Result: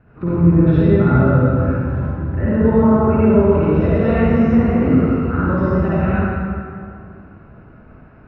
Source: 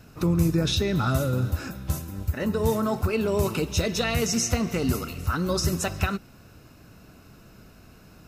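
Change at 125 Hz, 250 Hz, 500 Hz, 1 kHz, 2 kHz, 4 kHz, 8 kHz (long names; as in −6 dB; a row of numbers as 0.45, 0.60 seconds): +10.5 dB, +13.0 dB, +10.5 dB, +8.5 dB, +5.0 dB, below −10 dB, below −35 dB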